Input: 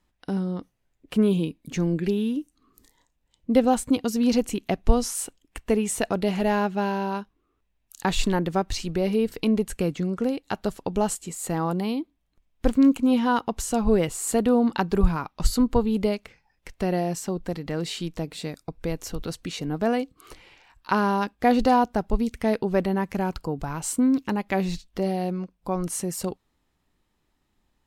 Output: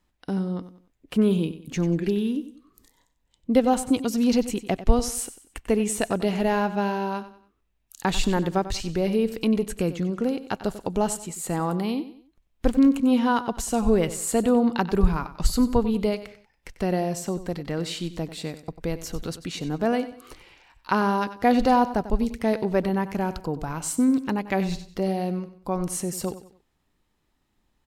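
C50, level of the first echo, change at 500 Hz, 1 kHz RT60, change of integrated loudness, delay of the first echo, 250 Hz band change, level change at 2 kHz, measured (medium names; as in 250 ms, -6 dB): no reverb, -14.0 dB, 0.0 dB, no reverb, 0.0 dB, 94 ms, 0.0 dB, 0.0 dB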